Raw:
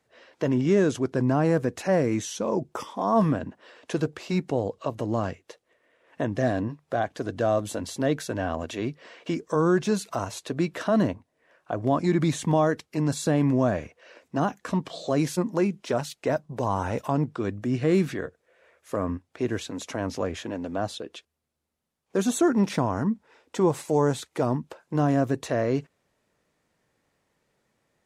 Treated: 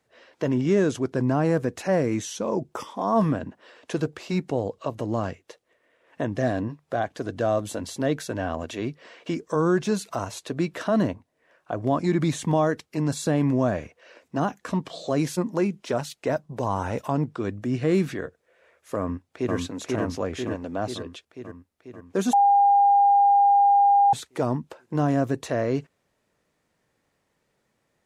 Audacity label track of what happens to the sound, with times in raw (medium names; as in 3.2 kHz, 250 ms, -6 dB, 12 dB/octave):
18.990000	19.550000	echo throw 490 ms, feedback 65%, level -1 dB
22.330000	24.130000	bleep 805 Hz -14 dBFS